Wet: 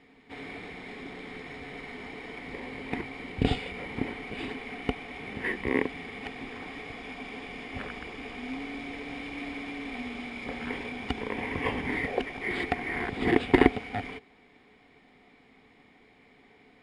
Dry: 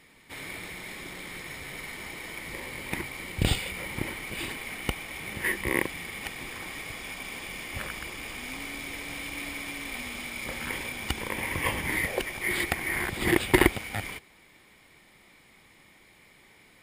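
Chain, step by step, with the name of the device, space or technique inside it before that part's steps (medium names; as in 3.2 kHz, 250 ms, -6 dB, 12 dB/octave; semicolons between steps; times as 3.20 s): inside a cardboard box (low-pass 3.7 kHz 12 dB/octave; small resonant body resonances 260/430/720 Hz, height 13 dB, ringing for 65 ms); trim -3.5 dB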